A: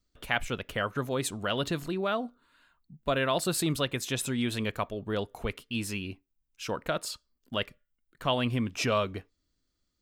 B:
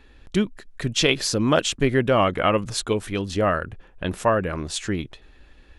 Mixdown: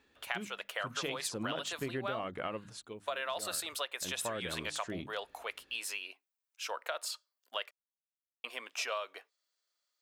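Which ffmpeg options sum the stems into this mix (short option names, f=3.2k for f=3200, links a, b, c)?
-filter_complex "[0:a]highpass=f=590:w=0.5412,highpass=f=590:w=1.3066,volume=-0.5dB,asplit=3[a][b][c];[a]atrim=end=7.71,asetpts=PTS-STARTPTS,afade=t=out:st=7.706:d=0.004:c=hsin[d];[b]atrim=start=7.71:end=8.44,asetpts=PTS-STARTPTS,volume=0[e];[c]atrim=start=8.44,asetpts=PTS-STARTPTS,afade=t=in:d=0.004:c=hsin[f];[d][e][f]concat=n=3:v=0:a=1[g];[1:a]highpass=110,bandreject=f=50:t=h:w=6,bandreject=f=100:t=h:w=6,bandreject=f=150:t=h:w=6,bandreject=f=200:t=h:w=6,bandreject=f=250:t=h:w=6,bandreject=f=300:t=h:w=6,volume=-0.5dB,afade=t=out:st=2.39:d=0.44:silence=0.316228,afade=t=in:st=3.92:d=0.53:silence=0.237137[h];[g][h]amix=inputs=2:normalize=0,acompressor=threshold=-33dB:ratio=6"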